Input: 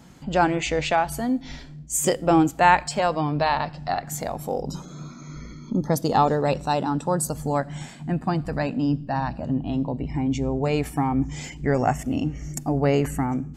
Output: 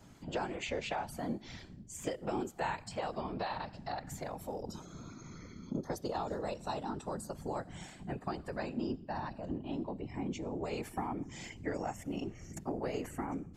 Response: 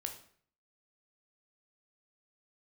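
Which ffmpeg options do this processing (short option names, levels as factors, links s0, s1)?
-filter_complex "[0:a]acrossover=split=270|4400[s0][s1][s2];[s0]acompressor=threshold=0.0126:ratio=4[s3];[s1]acompressor=threshold=0.0447:ratio=4[s4];[s2]acompressor=threshold=0.00631:ratio=4[s5];[s3][s4][s5]amix=inputs=3:normalize=0,afftfilt=real='hypot(re,im)*cos(2*PI*random(0))':imag='hypot(re,im)*sin(2*PI*random(1))':win_size=512:overlap=0.75,volume=0.75"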